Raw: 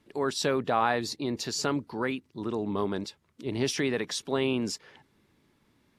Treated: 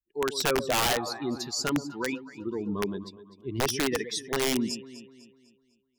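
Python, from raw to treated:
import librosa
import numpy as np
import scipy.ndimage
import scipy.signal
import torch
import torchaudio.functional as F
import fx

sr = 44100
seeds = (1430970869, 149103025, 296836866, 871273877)

y = fx.bin_expand(x, sr, power=2.0)
y = fx.echo_alternate(y, sr, ms=125, hz=920.0, feedback_pct=64, wet_db=-11.5)
y = (np.mod(10.0 ** (23.0 / 20.0) * y + 1.0, 2.0) - 1.0) / 10.0 ** (23.0 / 20.0)
y = F.gain(torch.from_numpy(y), 4.5).numpy()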